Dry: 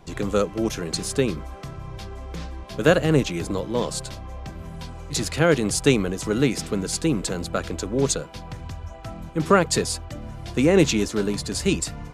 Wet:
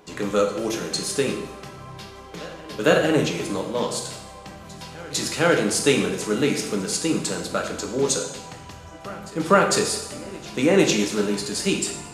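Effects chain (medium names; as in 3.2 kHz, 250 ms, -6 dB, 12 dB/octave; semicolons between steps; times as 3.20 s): high-pass 310 Hz 6 dB/octave; reverse echo 452 ms -21 dB; on a send at -1 dB: reverberation, pre-delay 3 ms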